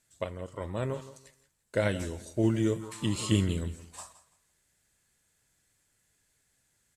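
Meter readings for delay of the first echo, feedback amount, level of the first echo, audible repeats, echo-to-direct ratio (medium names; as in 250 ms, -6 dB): 167 ms, 25%, -15.5 dB, 2, -15.0 dB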